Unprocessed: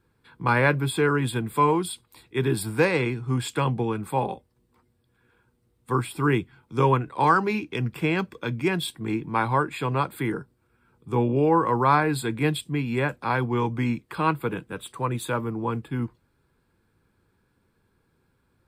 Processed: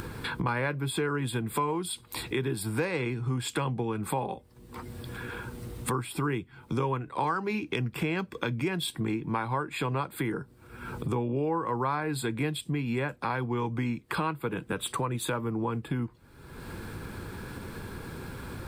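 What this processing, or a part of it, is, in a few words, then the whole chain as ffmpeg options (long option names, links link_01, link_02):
upward and downward compression: -af "acompressor=mode=upward:threshold=-24dB:ratio=2.5,acompressor=threshold=-33dB:ratio=4,volume=4.5dB"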